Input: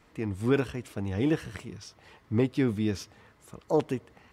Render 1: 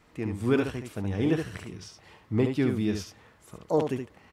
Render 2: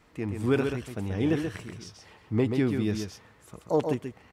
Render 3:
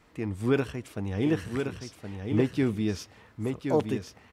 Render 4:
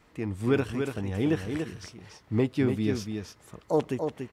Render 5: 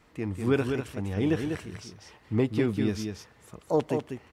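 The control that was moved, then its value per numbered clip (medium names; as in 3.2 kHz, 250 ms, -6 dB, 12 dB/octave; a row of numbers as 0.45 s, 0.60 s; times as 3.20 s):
delay, time: 71 ms, 132 ms, 1070 ms, 287 ms, 196 ms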